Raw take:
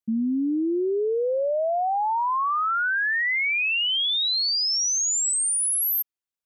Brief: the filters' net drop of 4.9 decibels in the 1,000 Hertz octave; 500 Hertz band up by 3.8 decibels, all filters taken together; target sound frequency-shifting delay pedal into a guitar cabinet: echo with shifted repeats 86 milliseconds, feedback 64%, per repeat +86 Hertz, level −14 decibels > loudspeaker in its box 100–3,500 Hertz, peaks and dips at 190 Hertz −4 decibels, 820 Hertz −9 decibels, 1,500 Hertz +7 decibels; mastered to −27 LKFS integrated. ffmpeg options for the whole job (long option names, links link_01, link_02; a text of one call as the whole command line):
ffmpeg -i in.wav -filter_complex "[0:a]equalizer=frequency=500:width_type=o:gain=7.5,equalizer=frequency=1000:width_type=o:gain=-7.5,asplit=8[link_01][link_02][link_03][link_04][link_05][link_06][link_07][link_08];[link_02]adelay=86,afreqshift=86,volume=-14dB[link_09];[link_03]adelay=172,afreqshift=172,volume=-17.9dB[link_10];[link_04]adelay=258,afreqshift=258,volume=-21.8dB[link_11];[link_05]adelay=344,afreqshift=344,volume=-25.6dB[link_12];[link_06]adelay=430,afreqshift=430,volume=-29.5dB[link_13];[link_07]adelay=516,afreqshift=516,volume=-33.4dB[link_14];[link_08]adelay=602,afreqshift=602,volume=-37.3dB[link_15];[link_01][link_09][link_10][link_11][link_12][link_13][link_14][link_15]amix=inputs=8:normalize=0,highpass=100,equalizer=frequency=190:width_type=q:width=4:gain=-4,equalizer=frequency=820:width_type=q:width=4:gain=-9,equalizer=frequency=1500:width_type=q:width=4:gain=7,lowpass=frequency=3500:width=0.5412,lowpass=frequency=3500:width=1.3066,volume=-4.5dB" out.wav